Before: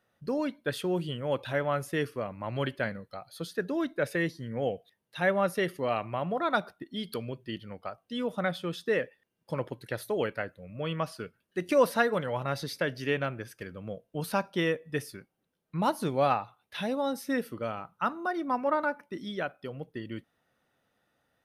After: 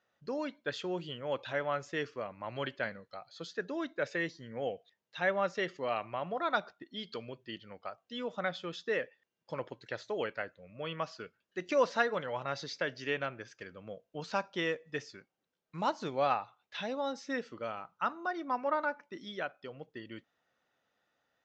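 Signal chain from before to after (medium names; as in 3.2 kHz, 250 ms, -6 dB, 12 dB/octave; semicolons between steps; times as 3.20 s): bass shelf 280 Hz -11 dB; 14.34–16.02 s: short-mantissa float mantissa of 4-bit; resampled via 16 kHz; trim -2.5 dB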